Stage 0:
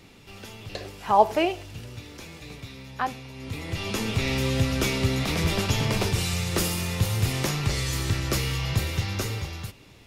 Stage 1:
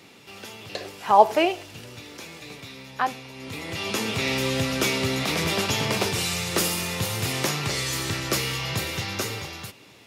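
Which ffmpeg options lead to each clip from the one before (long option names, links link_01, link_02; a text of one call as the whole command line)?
ffmpeg -i in.wav -af "highpass=170,equalizer=frequency=220:width_type=o:width=1.7:gain=-3,volume=3.5dB" out.wav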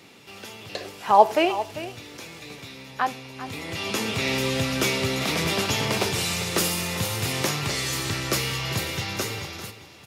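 ffmpeg -i in.wav -af "aecho=1:1:396:0.211" out.wav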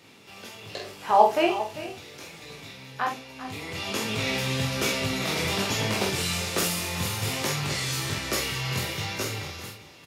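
ffmpeg -i in.wav -filter_complex "[0:a]flanger=delay=18.5:depth=3.7:speed=1.2,asplit=2[link_01][link_02];[link_02]adelay=47,volume=-5.5dB[link_03];[link_01][link_03]amix=inputs=2:normalize=0" out.wav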